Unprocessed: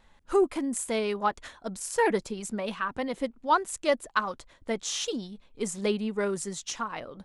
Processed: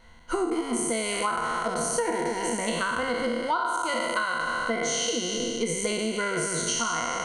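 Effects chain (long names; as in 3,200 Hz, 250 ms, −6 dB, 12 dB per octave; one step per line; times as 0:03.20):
peak hold with a decay on every bin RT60 2.07 s
EQ curve with evenly spaced ripples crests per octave 1.9, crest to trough 13 dB
downward compressor 12 to 1, threshold −27 dBFS, peak gain reduction 16.5 dB
level +3.5 dB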